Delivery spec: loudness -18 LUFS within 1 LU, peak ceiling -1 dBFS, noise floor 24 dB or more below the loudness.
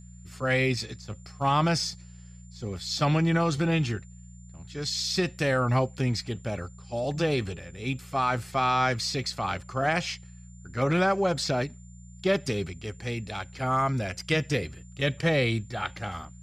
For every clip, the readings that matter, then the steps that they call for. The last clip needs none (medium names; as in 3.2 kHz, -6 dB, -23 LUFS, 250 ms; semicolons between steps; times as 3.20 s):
hum 60 Hz; highest harmonic 180 Hz; hum level -46 dBFS; steady tone 7.2 kHz; tone level -57 dBFS; loudness -28.0 LUFS; peak level -12.0 dBFS; loudness target -18.0 LUFS
-> de-hum 60 Hz, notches 3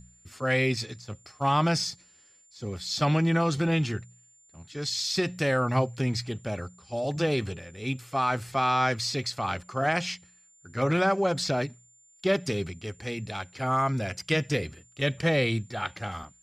hum not found; steady tone 7.2 kHz; tone level -57 dBFS
-> band-stop 7.2 kHz, Q 30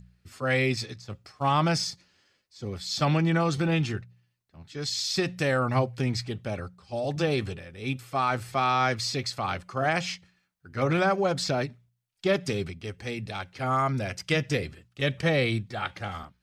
steady tone not found; loudness -28.0 LUFS; peak level -12.5 dBFS; loudness target -18.0 LUFS
-> trim +10 dB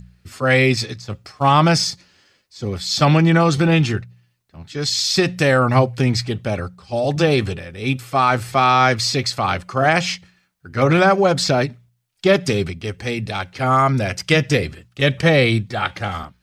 loudness -18.0 LUFS; peak level -2.5 dBFS; noise floor -63 dBFS